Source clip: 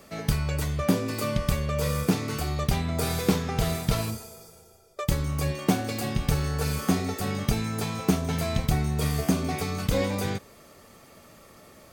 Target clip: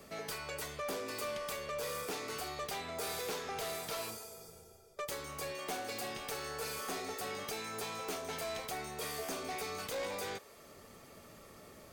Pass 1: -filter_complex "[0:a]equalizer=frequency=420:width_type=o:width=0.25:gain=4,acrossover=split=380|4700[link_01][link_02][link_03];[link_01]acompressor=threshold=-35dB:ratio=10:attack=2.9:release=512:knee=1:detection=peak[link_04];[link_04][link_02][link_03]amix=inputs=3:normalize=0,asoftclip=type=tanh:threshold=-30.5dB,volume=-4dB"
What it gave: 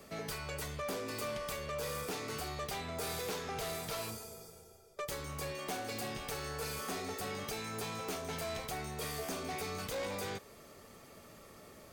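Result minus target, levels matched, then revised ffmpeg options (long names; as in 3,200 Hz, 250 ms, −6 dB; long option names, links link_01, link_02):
downward compressor: peak gain reduction −9.5 dB
-filter_complex "[0:a]equalizer=frequency=420:width_type=o:width=0.25:gain=4,acrossover=split=380|4700[link_01][link_02][link_03];[link_01]acompressor=threshold=-45.5dB:ratio=10:attack=2.9:release=512:knee=1:detection=peak[link_04];[link_04][link_02][link_03]amix=inputs=3:normalize=0,asoftclip=type=tanh:threshold=-30.5dB,volume=-4dB"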